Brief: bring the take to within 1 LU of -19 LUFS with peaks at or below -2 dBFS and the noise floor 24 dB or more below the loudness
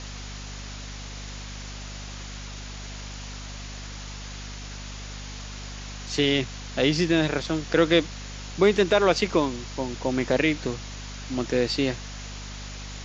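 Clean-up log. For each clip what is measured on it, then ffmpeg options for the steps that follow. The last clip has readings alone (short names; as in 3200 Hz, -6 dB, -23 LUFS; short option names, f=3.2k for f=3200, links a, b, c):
hum 50 Hz; harmonics up to 250 Hz; hum level -36 dBFS; noise floor -38 dBFS; noise floor target -49 dBFS; loudness -24.5 LUFS; peak -6.0 dBFS; loudness target -19.0 LUFS
-> -af "bandreject=f=50:t=h:w=6,bandreject=f=100:t=h:w=6,bandreject=f=150:t=h:w=6,bandreject=f=200:t=h:w=6,bandreject=f=250:t=h:w=6"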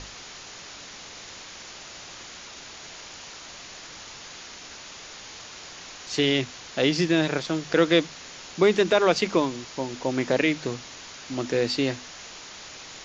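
hum none; noise floor -43 dBFS; noise floor target -49 dBFS
-> -af "afftdn=nr=6:nf=-43"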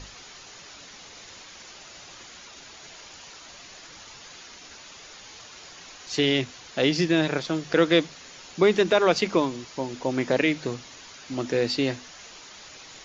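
noise floor -46 dBFS; noise floor target -48 dBFS
-> -af "afftdn=nr=6:nf=-46"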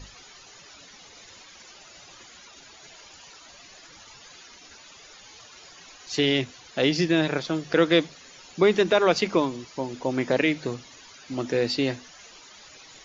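noise floor -49 dBFS; loudness -24.5 LUFS; peak -6.0 dBFS; loudness target -19.0 LUFS
-> -af "volume=5.5dB,alimiter=limit=-2dB:level=0:latency=1"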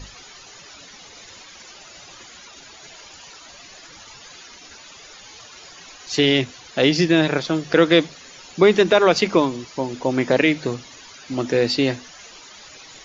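loudness -19.0 LUFS; peak -2.0 dBFS; noise floor -44 dBFS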